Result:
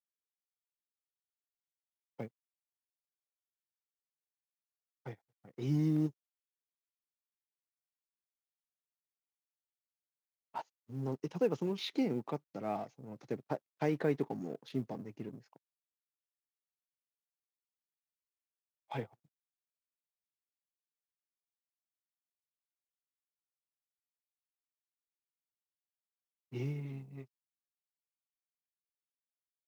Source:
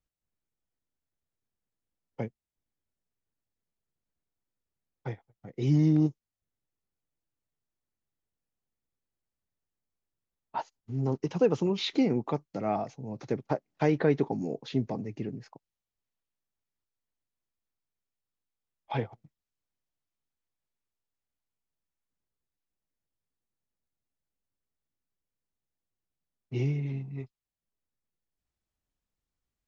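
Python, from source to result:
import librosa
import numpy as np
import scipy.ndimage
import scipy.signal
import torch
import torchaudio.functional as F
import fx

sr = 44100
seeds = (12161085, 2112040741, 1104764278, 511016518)

y = fx.law_mismatch(x, sr, coded='A')
y = scipy.signal.sosfilt(scipy.signal.butter(2, 110.0, 'highpass', fs=sr, output='sos'), y)
y = y * librosa.db_to_amplitude(-6.5)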